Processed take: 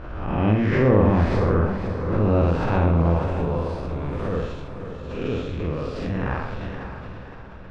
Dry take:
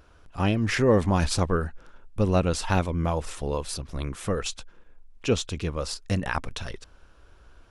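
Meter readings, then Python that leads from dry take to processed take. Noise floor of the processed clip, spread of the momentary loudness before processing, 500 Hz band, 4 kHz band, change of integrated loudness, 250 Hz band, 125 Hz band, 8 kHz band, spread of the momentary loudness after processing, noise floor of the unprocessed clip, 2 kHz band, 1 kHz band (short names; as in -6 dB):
-38 dBFS, 15 LU, +4.0 dB, -8.5 dB, +4.0 dB, +5.0 dB, +6.0 dB, under -20 dB, 16 LU, -55 dBFS, +0.5 dB, +3.0 dB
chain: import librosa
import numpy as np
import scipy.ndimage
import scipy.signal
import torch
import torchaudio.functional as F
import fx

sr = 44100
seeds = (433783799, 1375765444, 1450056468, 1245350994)

y = fx.spec_blur(x, sr, span_ms=214.0)
y = scipy.signal.sosfilt(scipy.signal.butter(2, 2000.0, 'lowpass', fs=sr, output='sos'), y)
y = fx.doubler(y, sr, ms=47.0, db=-3)
y = fx.echo_diffused(y, sr, ms=552, feedback_pct=47, wet_db=-8.0)
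y = fx.pre_swell(y, sr, db_per_s=40.0)
y = F.gain(torch.from_numpy(y), 4.5).numpy()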